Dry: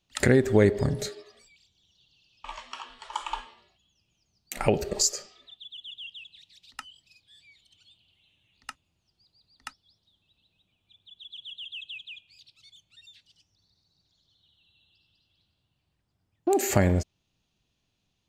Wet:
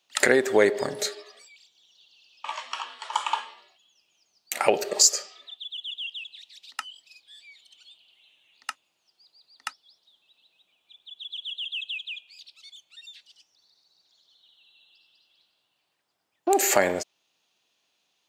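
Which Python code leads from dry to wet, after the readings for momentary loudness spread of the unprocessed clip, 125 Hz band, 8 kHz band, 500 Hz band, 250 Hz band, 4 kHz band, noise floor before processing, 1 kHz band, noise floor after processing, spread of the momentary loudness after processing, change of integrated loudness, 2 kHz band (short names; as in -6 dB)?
24 LU, -18.0 dB, +6.5 dB, +2.0 dB, -5.0 dB, +6.5 dB, -77 dBFS, +6.0 dB, -75 dBFS, 24 LU, +1.0 dB, +6.5 dB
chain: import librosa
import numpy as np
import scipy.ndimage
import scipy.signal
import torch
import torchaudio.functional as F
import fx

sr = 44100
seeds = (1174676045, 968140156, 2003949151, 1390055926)

p1 = scipy.signal.sosfilt(scipy.signal.butter(2, 530.0, 'highpass', fs=sr, output='sos'), x)
p2 = 10.0 ** (-15.5 / 20.0) * np.tanh(p1 / 10.0 ** (-15.5 / 20.0))
p3 = p1 + F.gain(torch.from_numpy(p2), -8.0).numpy()
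y = F.gain(torch.from_numpy(p3), 4.0).numpy()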